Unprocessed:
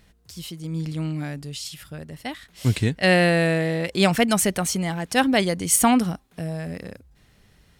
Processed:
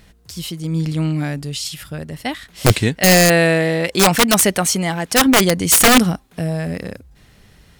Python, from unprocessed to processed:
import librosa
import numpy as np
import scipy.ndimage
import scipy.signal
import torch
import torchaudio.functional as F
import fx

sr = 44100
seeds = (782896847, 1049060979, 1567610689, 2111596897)

y = fx.low_shelf(x, sr, hz=200.0, db=-7.0, at=(2.72, 5.26))
y = (np.mod(10.0 ** (12.0 / 20.0) * y + 1.0, 2.0) - 1.0) / 10.0 ** (12.0 / 20.0)
y = y * 10.0 ** (8.0 / 20.0)